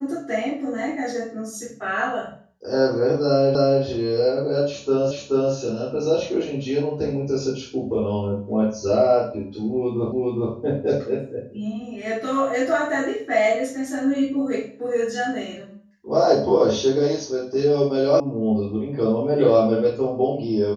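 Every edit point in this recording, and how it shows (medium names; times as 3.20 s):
3.55 s: repeat of the last 0.28 s
5.11 s: repeat of the last 0.43 s
10.12 s: repeat of the last 0.41 s
18.20 s: sound stops dead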